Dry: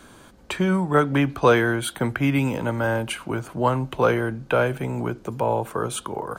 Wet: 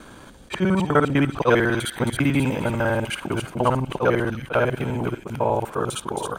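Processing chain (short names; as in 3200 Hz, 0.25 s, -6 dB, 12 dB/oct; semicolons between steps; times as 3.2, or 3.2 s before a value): local time reversal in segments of 50 ms; high shelf 5000 Hz -5 dB; in parallel at -2.5 dB: compressor, threshold -33 dBFS, peak gain reduction 19.5 dB; on the sum: thin delay 0.268 s, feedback 53%, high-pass 3000 Hz, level -4 dB; attack slew limiter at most 420 dB/s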